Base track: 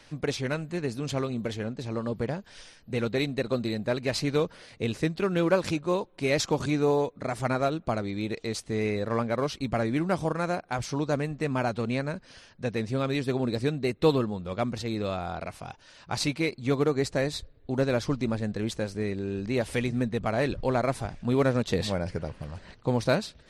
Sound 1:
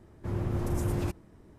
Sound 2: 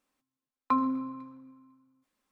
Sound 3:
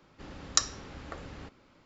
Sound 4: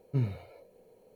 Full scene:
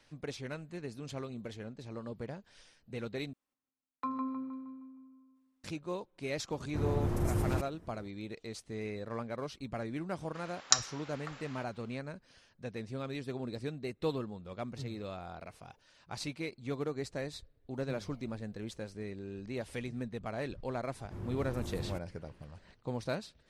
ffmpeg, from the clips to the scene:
-filter_complex "[1:a]asplit=2[a][b];[4:a]asplit=2[c][d];[0:a]volume=-11.5dB[e];[2:a]asplit=2[f][g];[g]adelay=156,lowpass=f=2.7k:p=1,volume=-5dB,asplit=2[h][i];[i]adelay=156,lowpass=f=2.7k:p=1,volume=0.51,asplit=2[j][k];[k]adelay=156,lowpass=f=2.7k:p=1,volume=0.51,asplit=2[l][m];[m]adelay=156,lowpass=f=2.7k:p=1,volume=0.51,asplit=2[n][o];[o]adelay=156,lowpass=f=2.7k:p=1,volume=0.51,asplit=2[p][q];[q]adelay=156,lowpass=f=2.7k:p=1,volume=0.51[r];[f][h][j][l][n][p][r]amix=inputs=7:normalize=0[s];[3:a]highpass=880[t];[e]asplit=2[u][v];[u]atrim=end=3.334[w];[s]atrim=end=2.31,asetpts=PTS-STARTPTS,volume=-10.5dB[x];[v]atrim=start=5.636[y];[a]atrim=end=1.58,asetpts=PTS-STARTPTS,volume=-1.5dB,afade=t=in:d=0.004:c=hsin,afade=t=out:st=1.576:d=0.004:c=hsin,adelay=286650S[z];[t]atrim=end=1.85,asetpts=PTS-STARTPTS,afade=t=in:d=0.004:c=hsin,afade=t=out:st=1.846:d=0.004:c=hsin,adelay=10150[aa];[c]atrim=end=1.15,asetpts=PTS-STARTPTS,volume=-15.5dB,afade=t=in:d=0.004:c=hsin,afade=t=out:st=1.146:d=0.004:c=hsin,adelay=14640[ab];[d]atrim=end=1.15,asetpts=PTS-STARTPTS,volume=-13dB,afade=t=in:d=0.004:c=hsin,afade=t=out:st=1.146:d=0.004:c=hsin,adelay=17740[ac];[b]atrim=end=1.58,asetpts=PTS-STARTPTS,volume=-10.5dB,afade=t=in:d=0.004:c=hsin,afade=t=out:st=1.576:d=0.004:c=hsin,adelay=20870[ad];[w][x]acrossfade=d=0.004:c1=hsin:c2=hsin[ae];[ae][y]acrossfade=d=0.004:c1=hsin:c2=hsin[af];[af][z][aa][ab][ac][ad]amix=inputs=6:normalize=0"

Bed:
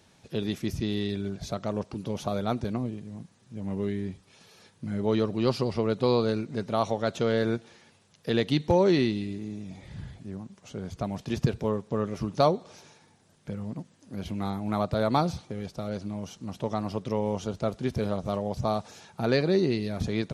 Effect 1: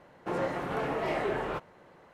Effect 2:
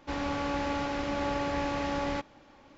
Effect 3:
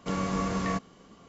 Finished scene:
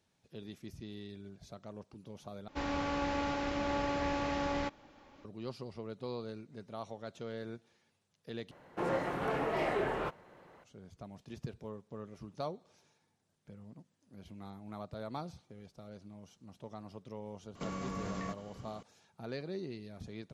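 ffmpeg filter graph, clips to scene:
-filter_complex "[0:a]volume=-17dB[a];[3:a]acompressor=threshold=-36dB:ratio=6:attack=3.2:release=140:knee=1:detection=peak[b];[a]asplit=3[c][d][e];[c]atrim=end=2.484[f];[2:a]atrim=end=2.77,asetpts=PTS-STARTPTS,volume=-3dB[g];[d]atrim=start=5.246:end=8.514[h];[1:a]atrim=end=2.13,asetpts=PTS-STARTPTS,volume=-2dB[i];[e]atrim=start=10.636[j];[b]atrim=end=1.28,asetpts=PTS-STARTPTS,volume=-0.5dB,afade=t=in:d=0.004:c=hsin,afade=t=out:st=1.276:d=0.004:c=hsin,adelay=17550[k];[f][g]acrossfade=d=0.004:c1=hsin:c2=hsin[l];[l][h]acrossfade=d=0.004:c1=hsin:c2=hsin[m];[m][i]acrossfade=d=0.004:c1=hsin:c2=hsin[n];[n][j]acrossfade=d=0.004:c1=hsin:c2=hsin[o];[o][k]amix=inputs=2:normalize=0"

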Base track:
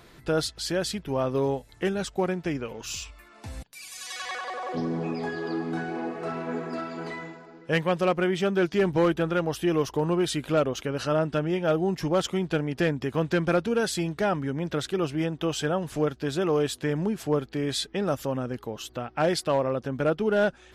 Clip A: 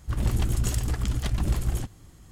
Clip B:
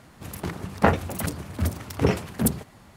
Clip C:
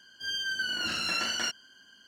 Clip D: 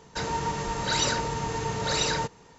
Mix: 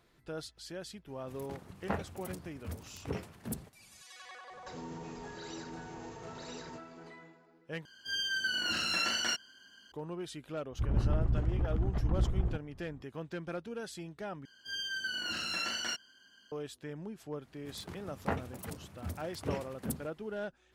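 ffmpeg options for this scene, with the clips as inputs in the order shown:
-filter_complex "[2:a]asplit=2[a][b];[3:a]asplit=2[c][d];[0:a]volume=-16dB[e];[4:a]acompressor=threshold=-40dB:ratio=4:attack=12:release=50:knee=1:detection=peak[f];[1:a]lowpass=1.1k[g];[d]acontrast=75[h];[e]asplit=3[i][j][k];[i]atrim=end=7.854[l];[c]atrim=end=2.07,asetpts=PTS-STARTPTS,volume=-1.5dB[m];[j]atrim=start=9.916:end=14.454[n];[h]atrim=end=2.07,asetpts=PTS-STARTPTS,volume=-12dB[o];[k]atrim=start=16.516[p];[a]atrim=end=2.96,asetpts=PTS-STARTPTS,volume=-16.5dB,afade=t=in:d=0.004:c=hsin,afade=t=out:st=2.956:d=0.004:c=hsin,adelay=1060[q];[f]atrim=end=2.58,asetpts=PTS-STARTPTS,volume=-11dB,afade=t=in:d=0.004:c=hsin,afade=t=out:st=2.576:d=0.004:c=hsin,adelay=4510[r];[g]atrim=end=2.31,asetpts=PTS-STARTPTS,volume=-4.5dB,afade=t=in:d=0.004:c=hsin,afade=t=out:st=2.306:d=0.004:c=hsin,adelay=10710[s];[b]atrim=end=2.96,asetpts=PTS-STARTPTS,volume=-15dB,afade=t=in:d=0.004:c=hsin,afade=t=out:st=2.956:d=0.004:c=hsin,adelay=17440[t];[l][m]acrossfade=d=0.004:c1=hsin:c2=hsin[u];[u][n]acrossfade=d=0.004:c1=hsin:c2=hsin[v];[v][o]acrossfade=d=0.004:c1=hsin:c2=hsin[w];[w][p]acrossfade=d=0.004:c1=hsin:c2=hsin[x];[x][q][r][s][t]amix=inputs=5:normalize=0"

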